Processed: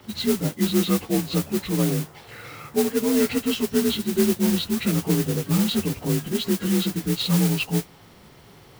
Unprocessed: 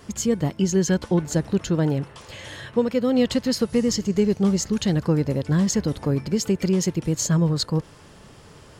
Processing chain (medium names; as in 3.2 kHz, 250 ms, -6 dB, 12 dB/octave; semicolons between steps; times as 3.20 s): frequency axis rescaled in octaves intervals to 84%; modulation noise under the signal 11 dB